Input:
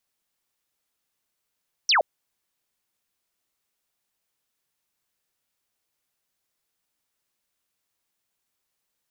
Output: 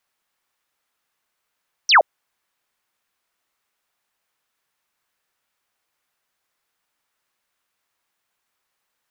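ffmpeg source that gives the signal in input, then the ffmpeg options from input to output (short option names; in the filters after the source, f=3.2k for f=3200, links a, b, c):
-f lavfi -i "aevalsrc='0.158*clip(t/0.002,0,1)*clip((0.12-t)/0.002,0,1)*sin(2*PI*6100*0.12/log(530/6100)*(exp(log(530/6100)*t/0.12)-1))':d=0.12:s=44100"
-af "equalizer=f=1.3k:t=o:w=2.6:g=9.5"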